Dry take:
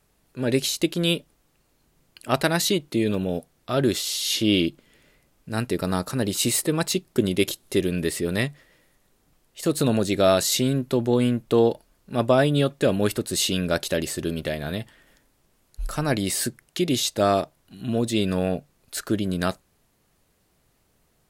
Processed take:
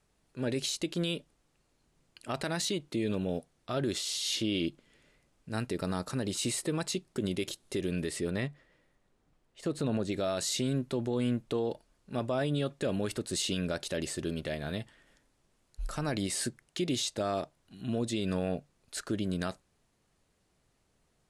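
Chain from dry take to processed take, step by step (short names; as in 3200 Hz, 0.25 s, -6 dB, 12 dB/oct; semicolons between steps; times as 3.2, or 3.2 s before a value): 8.3–10.12 high shelf 3700 Hz -10.5 dB; limiter -15.5 dBFS, peak gain reduction 9 dB; LPF 10000 Hz 24 dB/oct; gain -6.5 dB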